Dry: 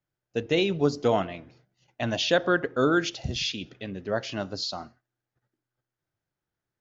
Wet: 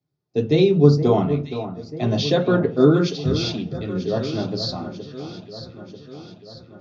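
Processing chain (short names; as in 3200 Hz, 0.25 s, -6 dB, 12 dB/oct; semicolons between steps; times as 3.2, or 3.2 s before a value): echo with dull and thin repeats by turns 0.47 s, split 1600 Hz, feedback 74%, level -10 dB; reverb RT60 0.30 s, pre-delay 3 ms, DRR 0 dB; gain -7 dB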